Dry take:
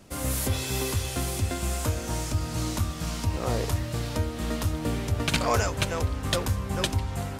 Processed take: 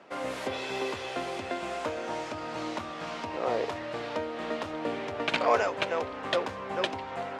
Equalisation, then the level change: dynamic bell 1.3 kHz, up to -6 dB, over -43 dBFS, Q 1; band-pass 520–2100 Hz; +6.5 dB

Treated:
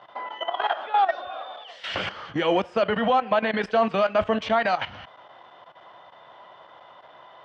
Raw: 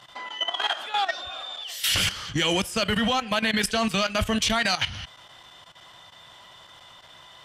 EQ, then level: band-pass filter 690 Hz, Q 0.57; distance through air 150 m; peaking EQ 620 Hz +6 dB 1.9 oct; +2.0 dB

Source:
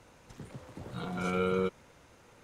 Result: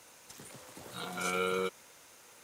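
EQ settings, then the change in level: RIAA curve recording; 0.0 dB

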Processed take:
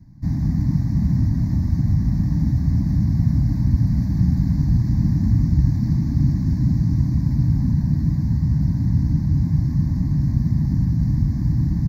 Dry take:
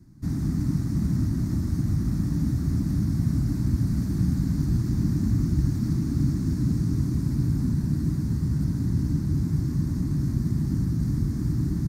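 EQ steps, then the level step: treble shelf 2.1 kHz -9 dB; static phaser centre 2 kHz, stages 8; +7.5 dB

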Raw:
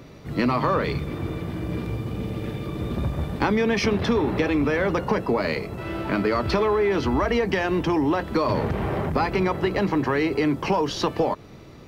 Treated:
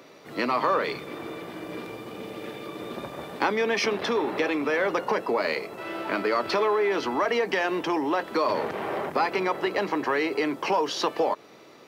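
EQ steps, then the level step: high-pass 400 Hz 12 dB/octave; 0.0 dB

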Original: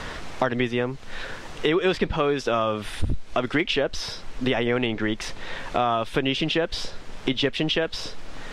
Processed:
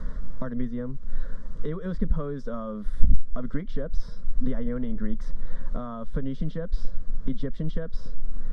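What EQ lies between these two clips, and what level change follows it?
tone controls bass +10 dB, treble 0 dB; tilt EQ -3 dB/octave; static phaser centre 520 Hz, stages 8; -13.0 dB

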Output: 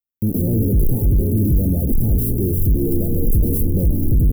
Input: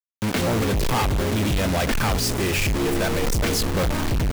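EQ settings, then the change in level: inverse Chebyshev band-stop 1.5–4 kHz, stop band 80 dB; peaking EQ 300 Hz -4.5 dB 2.4 oct; +9.0 dB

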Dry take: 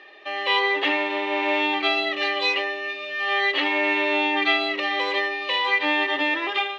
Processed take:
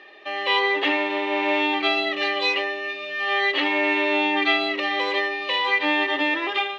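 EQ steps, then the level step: bass shelf 200 Hz +7.5 dB; 0.0 dB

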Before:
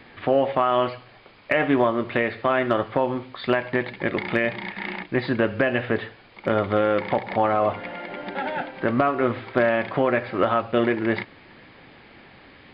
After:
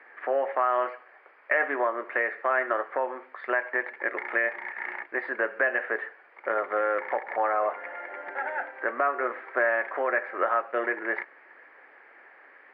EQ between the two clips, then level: high-pass 410 Hz 24 dB/octave; resonant high shelf 2.6 kHz -13.5 dB, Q 3; -6.0 dB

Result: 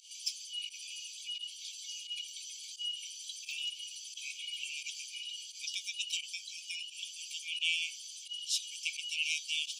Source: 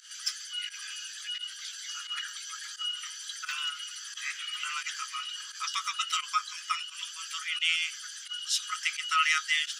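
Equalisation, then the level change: brick-wall FIR high-pass 2.2 kHz; -4.0 dB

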